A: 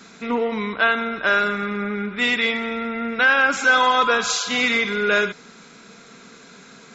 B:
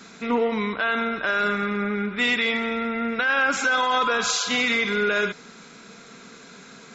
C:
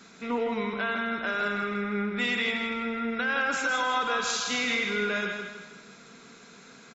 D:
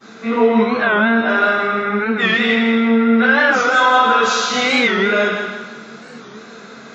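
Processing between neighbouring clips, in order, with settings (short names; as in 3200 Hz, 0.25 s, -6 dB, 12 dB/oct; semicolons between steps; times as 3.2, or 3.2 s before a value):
limiter -13.5 dBFS, peak gain reduction 8.5 dB
feedback echo 0.161 s, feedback 42%, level -5.5 dB; gain -6.5 dB
reverb RT60 0.55 s, pre-delay 3 ms, DRR -18.5 dB; record warp 45 rpm, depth 160 cents; gain -6.5 dB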